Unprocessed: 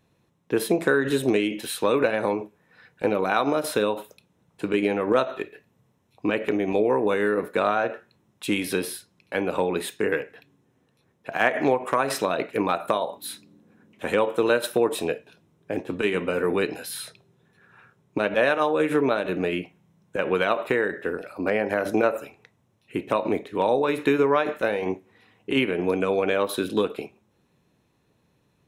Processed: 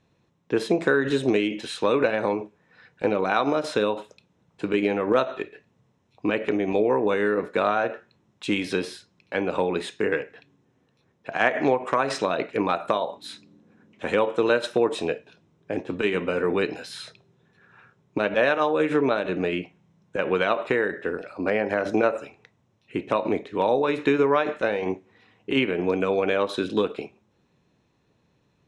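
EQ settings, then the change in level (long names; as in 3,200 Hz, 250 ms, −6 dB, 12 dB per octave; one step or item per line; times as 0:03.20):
low-pass filter 7,300 Hz 24 dB per octave
0.0 dB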